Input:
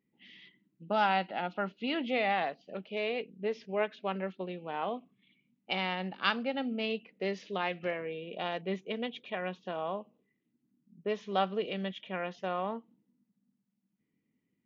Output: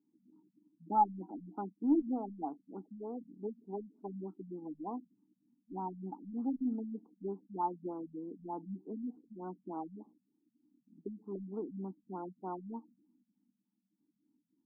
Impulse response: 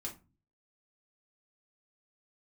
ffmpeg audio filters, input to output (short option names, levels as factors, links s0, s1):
-filter_complex "[0:a]asplit=3[s0][s1][s2];[s0]bandpass=f=300:t=q:w=8,volume=1[s3];[s1]bandpass=f=870:t=q:w=8,volume=0.501[s4];[s2]bandpass=f=2240:t=q:w=8,volume=0.355[s5];[s3][s4][s5]amix=inputs=3:normalize=0,aeval=exprs='0.0376*(cos(1*acos(clip(val(0)/0.0376,-1,1)))-cos(1*PI/2))+0.00106*(cos(2*acos(clip(val(0)/0.0376,-1,1)))-cos(2*PI/2))':c=same,afftfilt=real='re*lt(b*sr/1024,220*pow(1600/220,0.5+0.5*sin(2*PI*3.3*pts/sr)))':imag='im*lt(b*sr/1024,220*pow(1600/220,0.5+0.5*sin(2*PI*3.3*pts/sr)))':win_size=1024:overlap=0.75,volume=3.76"